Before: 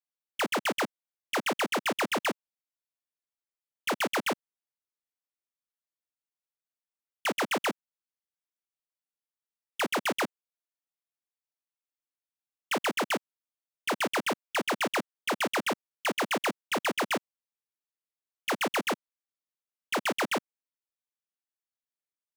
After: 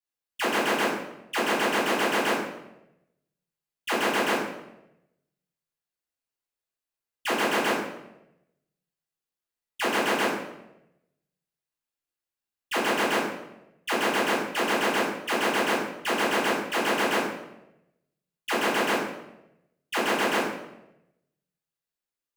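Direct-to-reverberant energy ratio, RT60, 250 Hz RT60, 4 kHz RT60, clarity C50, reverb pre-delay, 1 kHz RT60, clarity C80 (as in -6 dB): -11.5 dB, 0.90 s, 1.0 s, 0.65 s, 2.0 dB, 3 ms, 0.80 s, 4.5 dB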